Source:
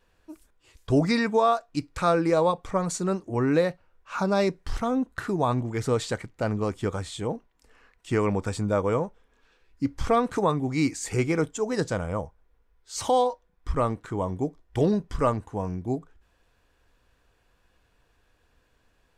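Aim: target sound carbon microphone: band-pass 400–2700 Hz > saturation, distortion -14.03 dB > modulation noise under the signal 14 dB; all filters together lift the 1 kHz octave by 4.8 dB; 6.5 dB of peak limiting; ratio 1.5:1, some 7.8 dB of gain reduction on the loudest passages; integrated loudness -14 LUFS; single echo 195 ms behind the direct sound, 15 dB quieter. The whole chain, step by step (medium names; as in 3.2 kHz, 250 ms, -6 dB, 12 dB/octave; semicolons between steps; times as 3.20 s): peaking EQ 1 kHz +6.5 dB; compression 1.5:1, threshold -36 dBFS; peak limiter -21 dBFS; band-pass 400–2700 Hz; delay 195 ms -15 dB; saturation -27.5 dBFS; modulation noise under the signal 14 dB; trim +23.5 dB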